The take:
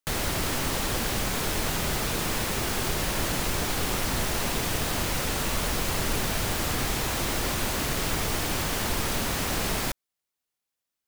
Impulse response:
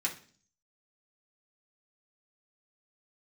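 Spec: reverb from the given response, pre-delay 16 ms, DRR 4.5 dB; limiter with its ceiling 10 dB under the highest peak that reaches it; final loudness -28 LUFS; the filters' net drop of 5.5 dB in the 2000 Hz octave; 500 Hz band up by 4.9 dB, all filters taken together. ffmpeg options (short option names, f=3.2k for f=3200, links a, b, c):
-filter_complex "[0:a]equalizer=f=500:t=o:g=6.5,equalizer=f=2k:t=o:g=-7.5,alimiter=limit=-22.5dB:level=0:latency=1,asplit=2[a][b];[1:a]atrim=start_sample=2205,adelay=16[c];[b][c]afir=irnorm=-1:irlink=0,volume=-9dB[d];[a][d]amix=inputs=2:normalize=0,volume=3dB"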